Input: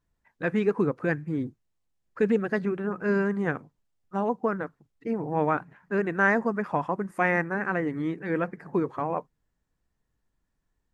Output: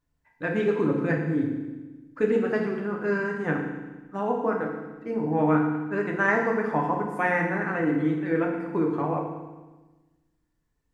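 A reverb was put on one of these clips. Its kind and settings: FDN reverb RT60 1.2 s, low-frequency decay 1.35×, high-frequency decay 1×, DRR -0.5 dB; trim -2 dB

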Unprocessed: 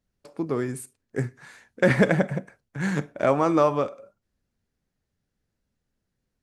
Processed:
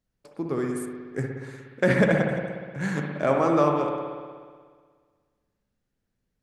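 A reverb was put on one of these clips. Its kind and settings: spring tank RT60 1.7 s, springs 60 ms, chirp 45 ms, DRR 1.5 dB; trim -2.5 dB

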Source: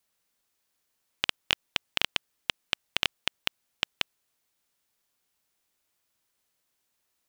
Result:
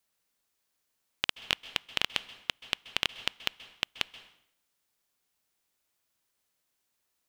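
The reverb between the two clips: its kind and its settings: plate-style reverb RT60 0.71 s, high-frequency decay 0.85×, pre-delay 120 ms, DRR 16 dB; trim -2 dB

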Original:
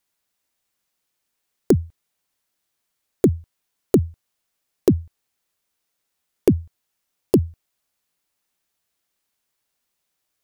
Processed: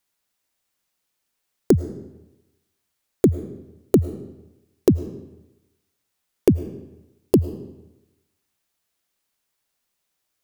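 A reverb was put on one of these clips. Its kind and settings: algorithmic reverb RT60 0.98 s, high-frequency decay 0.85×, pre-delay 65 ms, DRR 14 dB

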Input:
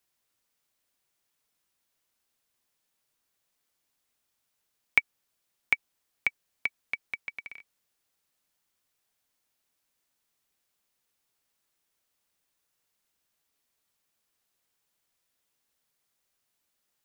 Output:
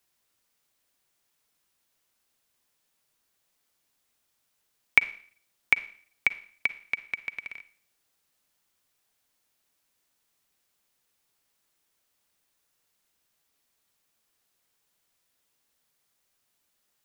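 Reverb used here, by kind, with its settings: Schroeder reverb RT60 0.5 s, DRR 14.5 dB; trim +3.5 dB

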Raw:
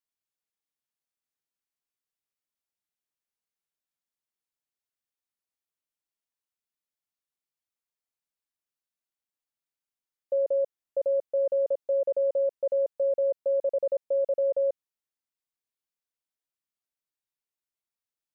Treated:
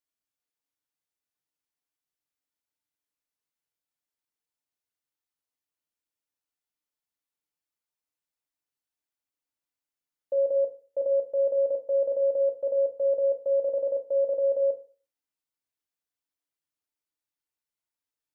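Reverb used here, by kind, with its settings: FDN reverb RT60 0.38 s, low-frequency decay 1×, high-frequency decay 0.65×, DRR 2.5 dB; trim -2 dB

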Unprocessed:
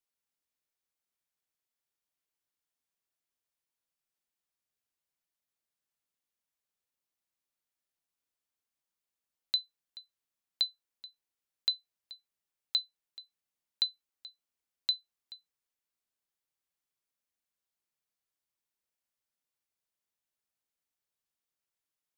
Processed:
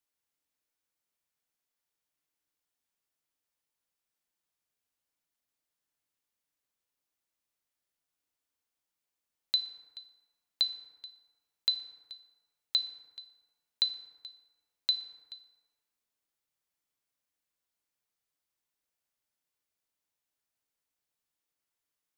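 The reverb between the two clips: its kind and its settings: FDN reverb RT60 1.5 s, low-frequency decay 0.75×, high-frequency decay 0.45×, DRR 7.5 dB; trim +1.5 dB

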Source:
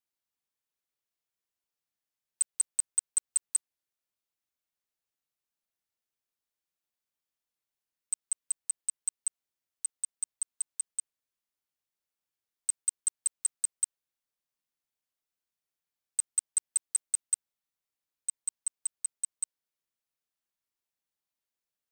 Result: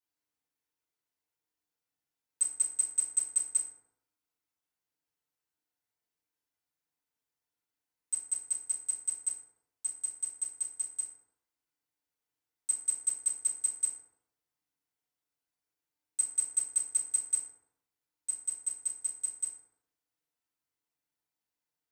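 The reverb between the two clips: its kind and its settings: FDN reverb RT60 0.8 s, low-frequency decay 1×, high-frequency decay 0.45×, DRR -9.5 dB; trim -8.5 dB

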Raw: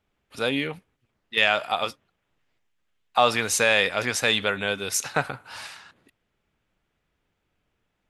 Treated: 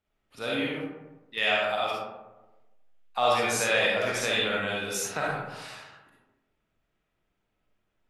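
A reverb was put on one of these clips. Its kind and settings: algorithmic reverb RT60 1.1 s, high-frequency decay 0.4×, pre-delay 15 ms, DRR -5.5 dB; trim -9.5 dB

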